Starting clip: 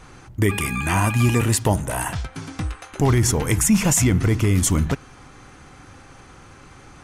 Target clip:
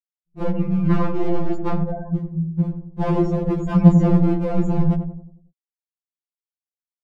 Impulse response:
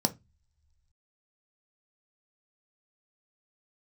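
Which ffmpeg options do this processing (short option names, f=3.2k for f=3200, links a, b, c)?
-filter_complex "[0:a]lowshelf=f=100:g=4,acrossover=split=790|5900[a][b][c];[c]alimiter=limit=-21dB:level=0:latency=1[d];[a][b][d]amix=inputs=3:normalize=0,afftfilt=real='re*gte(hypot(re,im),0.158)':imag='im*gte(hypot(re,im),0.158)':win_size=1024:overlap=0.75,aresample=16000,aresample=44100,bass=f=250:g=9,treble=f=4k:g=-1,afwtdn=0.0794,volume=13.5dB,asoftclip=hard,volume=-13.5dB,acrossover=split=5900[e][f];[f]acompressor=threshold=-59dB:ratio=4:attack=1:release=60[g];[e][g]amix=inputs=2:normalize=0,asplit=2[h][i];[i]adelay=91,lowpass=f=800:p=1,volume=-6dB,asplit=2[j][k];[k]adelay=91,lowpass=f=800:p=1,volume=0.5,asplit=2[l][m];[m]adelay=91,lowpass=f=800:p=1,volume=0.5,asplit=2[n][o];[o]adelay=91,lowpass=f=800:p=1,volume=0.5,asplit=2[p][q];[q]adelay=91,lowpass=f=800:p=1,volume=0.5,asplit=2[r][s];[s]adelay=91,lowpass=f=800:p=1,volume=0.5[t];[j][l][n][p][r][t]amix=inputs=6:normalize=0[u];[h][u]amix=inputs=2:normalize=0,afftfilt=real='re*2.83*eq(mod(b,8),0)':imag='im*2.83*eq(mod(b,8),0)':win_size=2048:overlap=0.75,volume=3.5dB"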